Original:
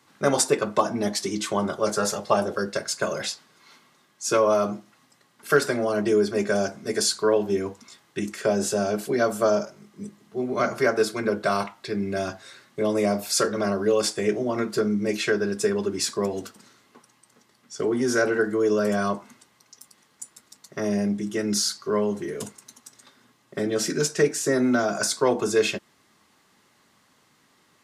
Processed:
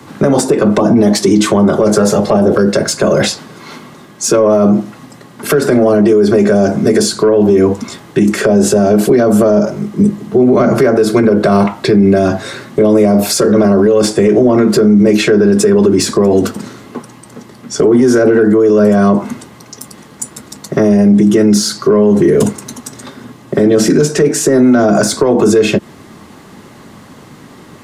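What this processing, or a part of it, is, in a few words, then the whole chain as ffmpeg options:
mastering chain: -filter_complex "[0:a]equalizer=f=5.1k:t=o:w=0.77:g=-1.5,acrossover=split=130|490[a][b][c];[a]acompressor=threshold=-51dB:ratio=4[d];[b]acompressor=threshold=-27dB:ratio=4[e];[c]acompressor=threshold=-28dB:ratio=4[f];[d][e][f]amix=inputs=3:normalize=0,acompressor=threshold=-31dB:ratio=2,asoftclip=type=tanh:threshold=-21dB,tiltshelf=f=750:g=7,alimiter=level_in=26dB:limit=-1dB:release=50:level=0:latency=1,volume=-1dB"

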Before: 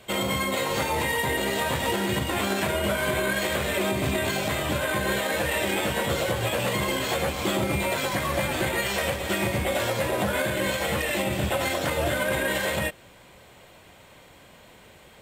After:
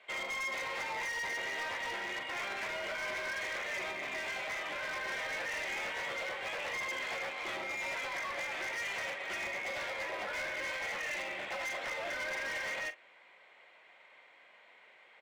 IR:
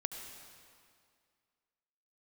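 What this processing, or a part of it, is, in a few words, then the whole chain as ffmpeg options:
megaphone: -filter_complex "[0:a]highpass=650,lowpass=3.1k,equalizer=f=2.1k:t=o:w=0.4:g=9,asoftclip=type=hard:threshold=-26.5dB,asplit=2[a][b];[b]adelay=42,volume=-13dB[c];[a][c]amix=inputs=2:normalize=0,volume=-8.5dB"

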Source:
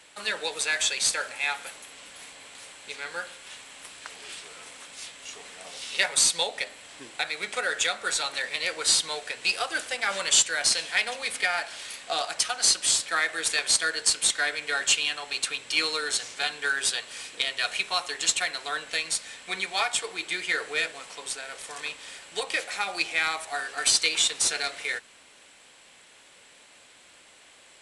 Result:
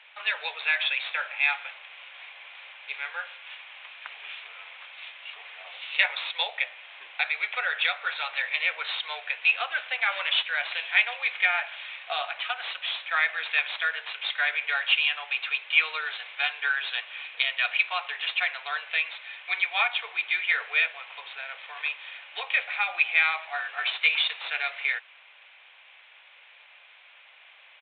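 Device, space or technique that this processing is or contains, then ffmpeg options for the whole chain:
musical greeting card: -af "aresample=8000,aresample=44100,highpass=f=670:w=0.5412,highpass=f=670:w=1.3066,equalizer=f=2.4k:t=o:w=0.39:g=7"

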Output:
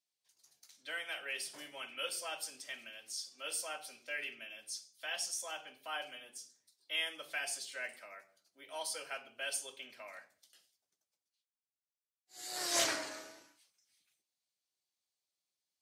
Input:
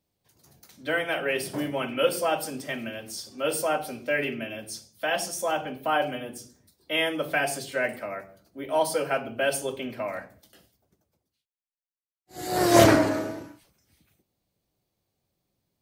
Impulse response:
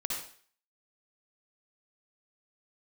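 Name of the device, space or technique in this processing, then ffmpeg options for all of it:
piezo pickup straight into a mixer: -af "lowpass=6.6k,aderivative"

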